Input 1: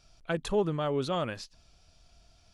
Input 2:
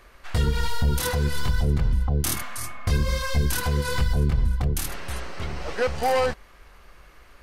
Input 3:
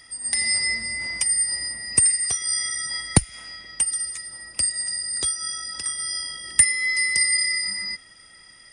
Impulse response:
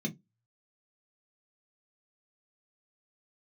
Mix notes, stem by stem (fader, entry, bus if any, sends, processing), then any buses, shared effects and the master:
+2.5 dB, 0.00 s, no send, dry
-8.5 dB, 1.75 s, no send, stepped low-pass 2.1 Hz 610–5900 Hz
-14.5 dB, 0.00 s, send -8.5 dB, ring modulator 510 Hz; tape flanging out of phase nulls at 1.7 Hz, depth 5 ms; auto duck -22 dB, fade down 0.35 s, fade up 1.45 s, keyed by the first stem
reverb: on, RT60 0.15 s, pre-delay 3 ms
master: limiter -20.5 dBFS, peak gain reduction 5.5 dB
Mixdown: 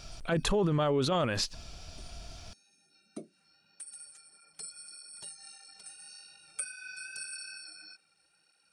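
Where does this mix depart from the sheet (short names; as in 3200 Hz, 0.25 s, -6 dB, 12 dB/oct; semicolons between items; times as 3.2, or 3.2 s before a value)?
stem 1 +2.5 dB -> +14.5 dB; stem 2: muted; stem 3: send -8.5 dB -> -14.5 dB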